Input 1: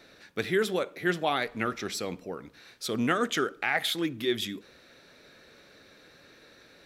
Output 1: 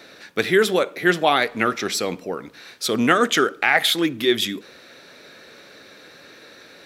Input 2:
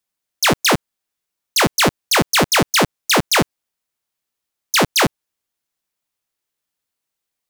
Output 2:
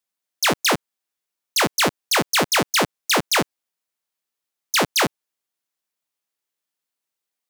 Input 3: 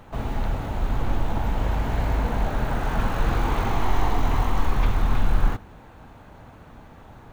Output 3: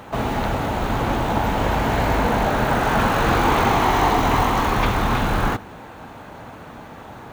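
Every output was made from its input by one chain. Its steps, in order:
HPF 210 Hz 6 dB/oct; match loudness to -20 LUFS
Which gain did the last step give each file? +10.5, -3.5, +10.5 dB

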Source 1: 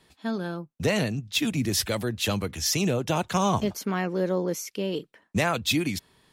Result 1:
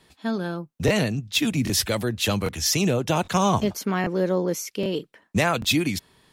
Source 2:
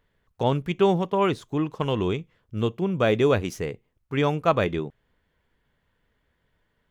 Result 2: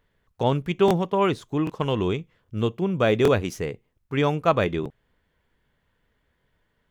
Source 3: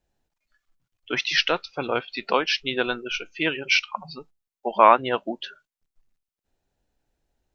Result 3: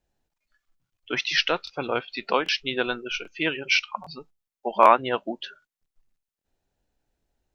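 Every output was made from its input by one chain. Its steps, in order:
crackling interface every 0.79 s, samples 1024, repeat, from 0.86; match loudness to -24 LUFS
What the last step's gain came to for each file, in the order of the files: +3.0, +1.0, -1.0 dB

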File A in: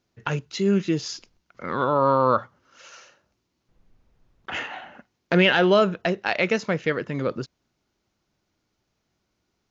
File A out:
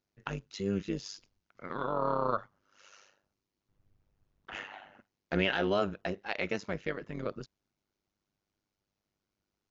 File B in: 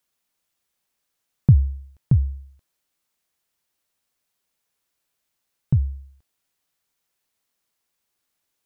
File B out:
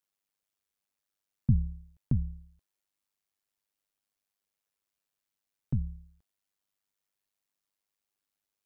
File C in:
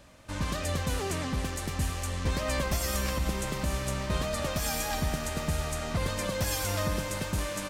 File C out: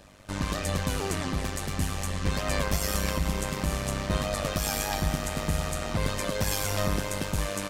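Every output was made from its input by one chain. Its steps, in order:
AM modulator 100 Hz, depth 70%; normalise peaks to -12 dBFS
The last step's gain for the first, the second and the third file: -8.0, -7.0, +5.5 dB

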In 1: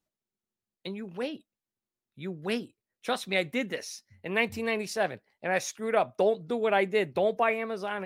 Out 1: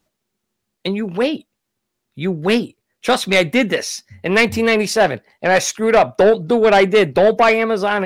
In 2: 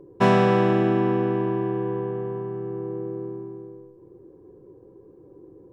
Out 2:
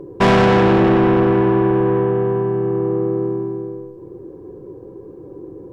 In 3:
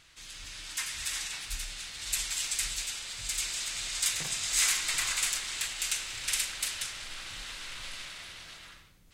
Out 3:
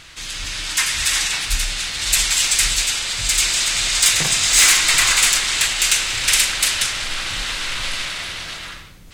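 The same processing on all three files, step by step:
high shelf 7500 Hz -4 dB; soft clip -22.5 dBFS; match loudness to -16 LUFS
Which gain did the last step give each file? +16.5, +13.0, +17.5 dB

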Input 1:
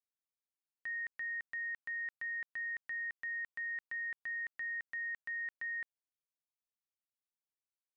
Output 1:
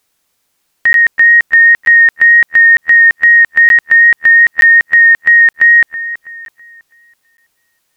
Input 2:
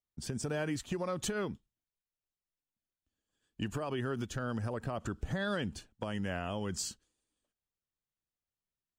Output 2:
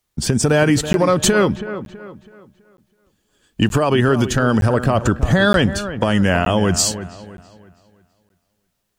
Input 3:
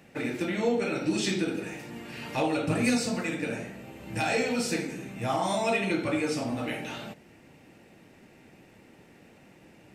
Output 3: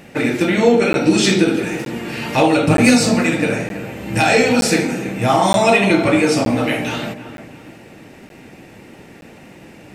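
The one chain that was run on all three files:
dark delay 0.327 s, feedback 36%, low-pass 2200 Hz, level -12 dB; wow and flutter 16 cents; crackling interface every 0.92 s, samples 512, zero, from 0.93; normalise peaks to -2 dBFS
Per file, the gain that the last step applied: +32.0, +20.0, +13.5 dB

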